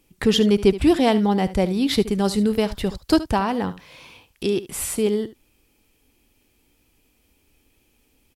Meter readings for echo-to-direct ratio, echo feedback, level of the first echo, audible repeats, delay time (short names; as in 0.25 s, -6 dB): -15.5 dB, no steady repeat, -15.5 dB, 1, 73 ms